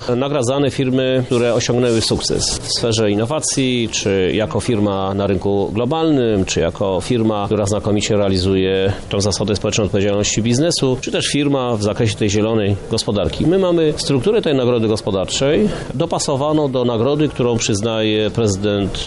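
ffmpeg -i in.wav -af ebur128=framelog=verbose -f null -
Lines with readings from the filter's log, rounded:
Integrated loudness:
  I:         -16.7 LUFS
  Threshold: -26.7 LUFS
Loudness range:
  LRA:         0.8 LU
  Threshold: -36.7 LUFS
  LRA low:   -17.1 LUFS
  LRA high:  -16.3 LUFS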